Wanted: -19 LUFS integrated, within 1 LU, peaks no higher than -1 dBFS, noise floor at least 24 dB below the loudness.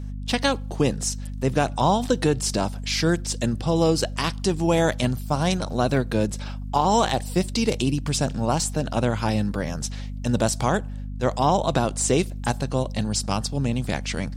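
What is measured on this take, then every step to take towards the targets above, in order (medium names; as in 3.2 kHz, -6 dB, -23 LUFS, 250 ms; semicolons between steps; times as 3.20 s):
hum 50 Hz; highest harmonic 250 Hz; hum level -29 dBFS; loudness -24.0 LUFS; peak level -8.0 dBFS; loudness target -19.0 LUFS
-> hum notches 50/100/150/200/250 Hz; trim +5 dB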